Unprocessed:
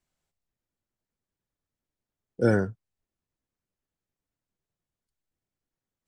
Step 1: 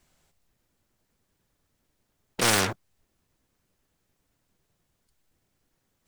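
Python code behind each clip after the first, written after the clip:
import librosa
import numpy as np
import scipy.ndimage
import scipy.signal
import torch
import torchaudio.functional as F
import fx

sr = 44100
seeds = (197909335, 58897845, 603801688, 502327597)

y = fx.leveller(x, sr, passes=3)
y = fx.spectral_comp(y, sr, ratio=4.0)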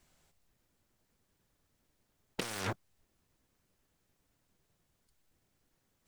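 y = fx.over_compress(x, sr, threshold_db=-30.0, ratio=-1.0)
y = y * 10.0 ** (-8.0 / 20.0)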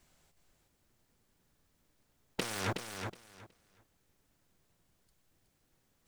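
y = fx.echo_feedback(x, sr, ms=369, feedback_pct=19, wet_db=-6.0)
y = y * 10.0 ** (1.5 / 20.0)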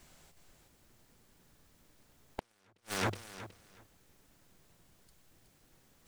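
y = fx.hum_notches(x, sr, base_hz=50, count=2)
y = fx.gate_flip(y, sr, shuts_db=-28.0, range_db=-42)
y = y * 10.0 ** (8.5 / 20.0)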